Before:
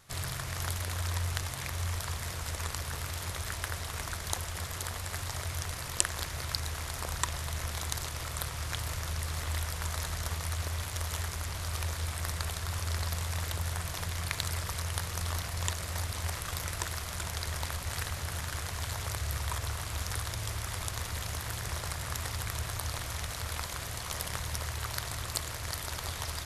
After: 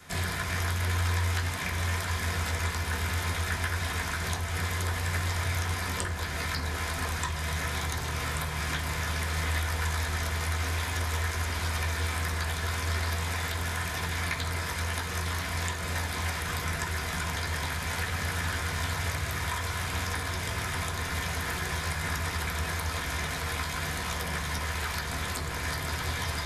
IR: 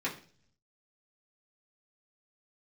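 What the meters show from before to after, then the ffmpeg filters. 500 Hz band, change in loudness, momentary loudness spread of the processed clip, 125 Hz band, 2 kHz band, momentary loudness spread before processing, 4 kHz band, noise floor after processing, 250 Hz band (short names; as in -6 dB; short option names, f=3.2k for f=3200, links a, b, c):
+5.5 dB, +4.5 dB, 2 LU, +4.0 dB, +8.5 dB, 3 LU, +3.0 dB, -34 dBFS, +8.5 dB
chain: -filter_complex "[0:a]acrossover=split=170|1400[a][b][c];[a]acompressor=threshold=-43dB:ratio=4[d];[b]acompressor=threshold=-49dB:ratio=4[e];[c]acompressor=threshold=-42dB:ratio=4[f];[d][e][f]amix=inputs=3:normalize=0[g];[1:a]atrim=start_sample=2205,asetrate=40572,aresample=44100[h];[g][h]afir=irnorm=-1:irlink=0,volume=6.5dB"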